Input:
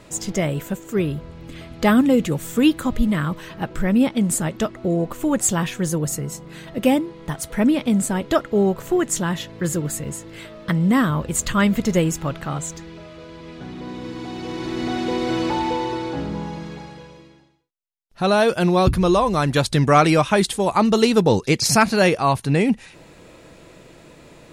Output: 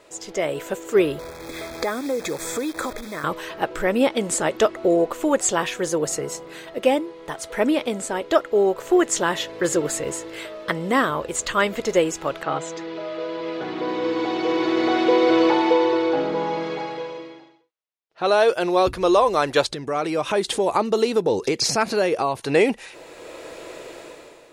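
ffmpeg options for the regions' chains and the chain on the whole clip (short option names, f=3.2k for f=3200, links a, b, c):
-filter_complex "[0:a]asettb=1/sr,asplit=3[a][b][c];[a]atrim=end=1.194[d];[b]atrim=start=1.19:end=3.24,asetpts=PTS-STARTPTS,afade=t=in:d=0.004:c=qsin,afade=t=out:st=2.046:d=0.004:c=qsin,acompressor=threshold=-28dB:ratio=8:attack=3.2:release=140:knee=1:detection=peak,acrusher=bits=8:dc=4:mix=0:aa=0.000001,asuperstop=centerf=2900:order=20:qfactor=4.8[e];[c]atrim=start=3.236[f];[d][e]acrossfade=d=0.004:c1=hsin:c2=qsin[g];[g][f]acrossfade=d=0.004:c1=qsin:c2=hsin,asettb=1/sr,asplit=3[h][i][j];[h]atrim=end=12.434[k];[i]atrim=start=12.43:end=18.26,asetpts=PTS-STARTPTS,afade=t=in:d=0.004:c=qsin,afade=t=out:st=5.826:d=0.004:c=qsin,highpass=110,lowpass=4k,aecho=1:1:6.3:0.46,atrim=end_sample=257103[l];[j]atrim=start=18.256[m];[k][l]acrossfade=d=0.004:c1=hsin:c2=qsin[n];[n][m]acrossfade=d=0.004:c1=qsin:c2=hsin,asettb=1/sr,asplit=3[o][p][q];[o]atrim=end=19.694[r];[p]atrim=start=19.69:end=22.41,asetpts=PTS-STARTPTS,afade=t=in:d=0.004:c=qsin,afade=t=out:st=2.716:d=0.004:c=qsin,equalizer=f=180:w=0.62:g=9.5,acompressor=threshold=-22dB:ratio=4:attack=3.2:release=140:knee=1:detection=peak[s];[q]atrim=start=22.406[t];[r][s]acrossfade=d=0.004:c1=hsin:c2=qsin[u];[u][t]acrossfade=d=0.004:c1=qsin:c2=hsin,acrossover=split=8000[v][w];[w]acompressor=threshold=-49dB:ratio=4:attack=1:release=60[x];[v][x]amix=inputs=2:normalize=0,lowshelf=f=280:t=q:w=1.5:g=-13,dynaudnorm=f=120:g=9:m=13dB,volume=-4.5dB"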